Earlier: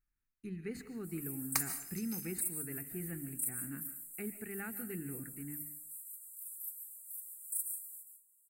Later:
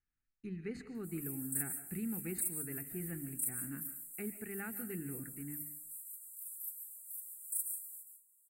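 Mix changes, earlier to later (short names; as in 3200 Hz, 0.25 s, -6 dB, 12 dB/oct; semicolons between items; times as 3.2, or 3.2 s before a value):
speech: add air absorption 70 m; second sound: muted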